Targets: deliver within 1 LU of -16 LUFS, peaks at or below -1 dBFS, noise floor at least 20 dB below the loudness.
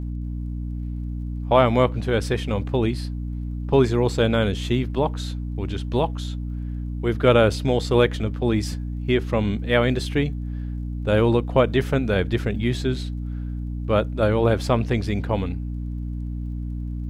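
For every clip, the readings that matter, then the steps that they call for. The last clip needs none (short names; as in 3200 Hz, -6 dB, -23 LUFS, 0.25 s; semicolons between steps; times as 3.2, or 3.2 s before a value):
ticks 23/s; hum 60 Hz; harmonics up to 300 Hz; hum level -26 dBFS; loudness -23.5 LUFS; peak -3.0 dBFS; loudness target -16.0 LUFS
-> de-click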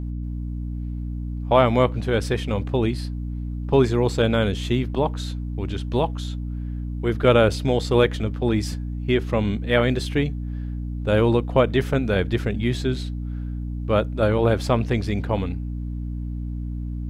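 ticks 0/s; hum 60 Hz; harmonics up to 300 Hz; hum level -26 dBFS
-> de-hum 60 Hz, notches 5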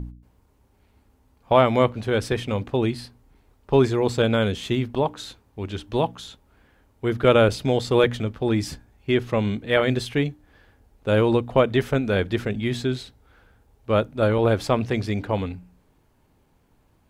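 hum none; loudness -23.0 LUFS; peak -3.0 dBFS; loudness target -16.0 LUFS
-> gain +7 dB; limiter -1 dBFS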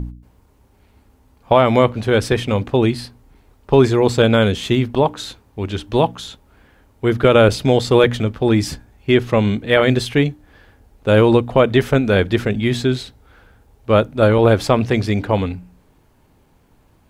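loudness -16.5 LUFS; peak -1.0 dBFS; noise floor -55 dBFS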